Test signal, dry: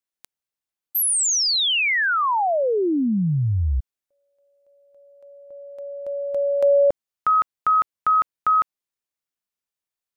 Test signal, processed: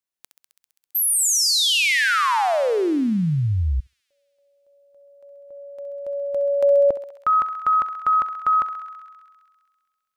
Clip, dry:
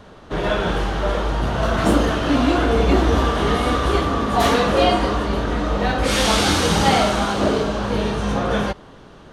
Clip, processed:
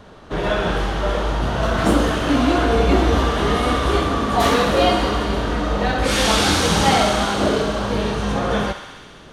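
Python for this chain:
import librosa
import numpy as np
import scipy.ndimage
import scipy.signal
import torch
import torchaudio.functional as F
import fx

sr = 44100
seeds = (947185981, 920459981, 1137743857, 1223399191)

y = fx.echo_thinned(x, sr, ms=66, feedback_pct=85, hz=700.0, wet_db=-9.5)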